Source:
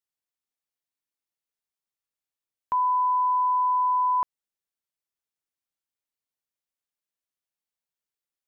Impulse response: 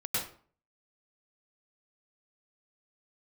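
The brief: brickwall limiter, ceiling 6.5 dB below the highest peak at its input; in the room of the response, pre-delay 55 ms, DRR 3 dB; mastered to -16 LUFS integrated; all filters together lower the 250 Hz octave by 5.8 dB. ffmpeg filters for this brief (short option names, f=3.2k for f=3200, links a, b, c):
-filter_complex "[0:a]equalizer=f=250:t=o:g=-8.5,alimiter=level_in=2dB:limit=-24dB:level=0:latency=1,volume=-2dB,asplit=2[a][b];[1:a]atrim=start_sample=2205,adelay=55[c];[b][c]afir=irnorm=-1:irlink=0,volume=-9.5dB[d];[a][d]amix=inputs=2:normalize=0,volume=12dB"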